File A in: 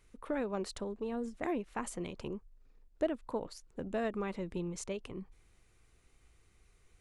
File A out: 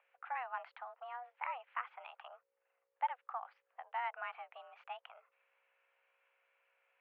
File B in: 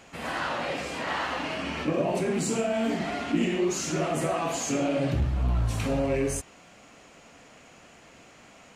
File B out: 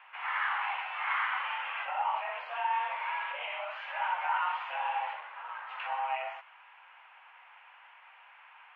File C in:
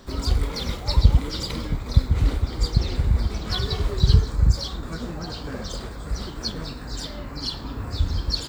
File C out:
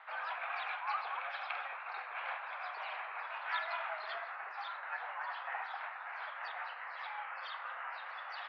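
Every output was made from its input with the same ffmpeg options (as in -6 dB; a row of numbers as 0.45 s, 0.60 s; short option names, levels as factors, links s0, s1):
-af "aeval=exprs='val(0)+0.00447*(sin(2*PI*60*n/s)+sin(2*PI*2*60*n/s)/2+sin(2*PI*3*60*n/s)/3+sin(2*PI*4*60*n/s)/4+sin(2*PI*5*60*n/s)/5)':c=same,highpass=f=590:t=q:w=0.5412,highpass=f=590:t=q:w=1.307,lowpass=f=2500:t=q:w=0.5176,lowpass=f=2500:t=q:w=0.7071,lowpass=f=2500:t=q:w=1.932,afreqshift=250"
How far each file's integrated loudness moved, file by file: -5.0 LU, -5.5 LU, -15.5 LU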